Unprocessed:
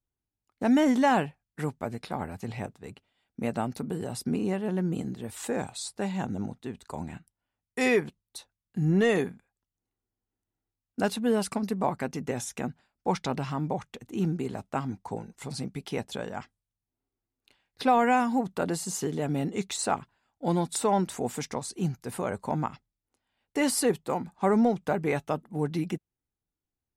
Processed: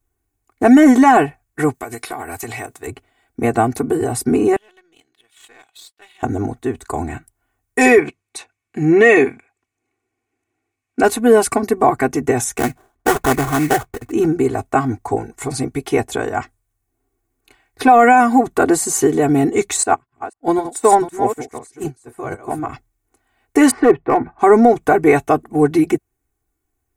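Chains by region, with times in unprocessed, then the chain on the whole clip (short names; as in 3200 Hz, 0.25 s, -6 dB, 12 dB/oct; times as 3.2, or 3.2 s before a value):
1.74–2.87 tilt +3 dB/oct + compressor 10:1, threshold -37 dBFS
4.56–6.23 band-pass 3300 Hz, Q 4.6 + power-law curve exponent 1.4
7.98–11.03 BPF 140–7300 Hz + bell 2400 Hz +13 dB 0.42 oct
12.58–14.12 LPF 9500 Hz + sample-rate reducer 2300 Hz, jitter 20%
19.83–22.69 reverse delay 0.251 s, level -5 dB + upward expander 2.5:1, over -39 dBFS
23.71–24.39 LPF 2300 Hz 24 dB/oct + hard clip -20.5 dBFS
whole clip: band shelf 3900 Hz -8.5 dB 1.2 oct; comb 2.7 ms, depth 95%; maximiser +14 dB; gain -1 dB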